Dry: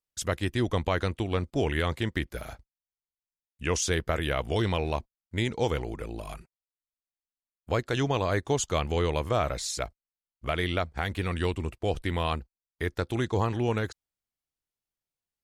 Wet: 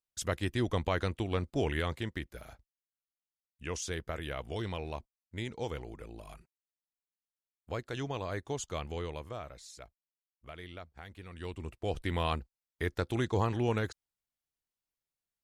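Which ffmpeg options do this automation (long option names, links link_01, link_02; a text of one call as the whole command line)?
ffmpeg -i in.wav -af "volume=11dB,afade=type=out:start_time=1.65:duration=0.64:silence=0.501187,afade=type=out:start_time=8.87:duration=0.63:silence=0.398107,afade=type=in:start_time=11.32:duration=0.26:silence=0.398107,afade=type=in:start_time=11.58:duration=0.62:silence=0.446684" out.wav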